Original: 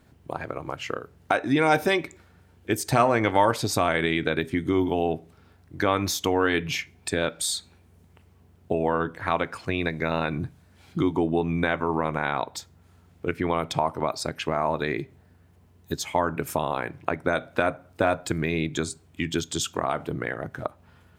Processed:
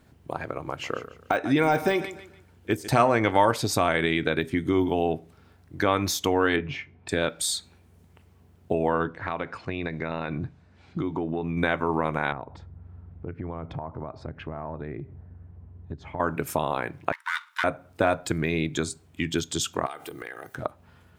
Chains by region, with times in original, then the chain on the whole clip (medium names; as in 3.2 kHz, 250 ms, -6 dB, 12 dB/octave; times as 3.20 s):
0.61–2.88 s: feedback delay 146 ms, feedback 32%, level -15 dB + de-esser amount 80%
6.56–7.09 s: Bessel low-pass 1.6 kHz + doubling 21 ms -9 dB
9.06–11.57 s: band-stop 3.2 kHz, Q 18 + compression 3:1, threshold -25 dBFS + distance through air 120 m
12.32–16.20 s: low-pass 1.4 kHz + peaking EQ 63 Hz +14 dB 2.7 oct + compression 3:1, threshold -34 dBFS
17.12–17.64 s: comb filter that takes the minimum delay 0.55 ms + Chebyshev high-pass 910 Hz, order 8
19.86–20.55 s: RIAA curve recording + compression 4:1, threshold -35 dBFS + comb 2.5 ms, depth 50%
whole clip: none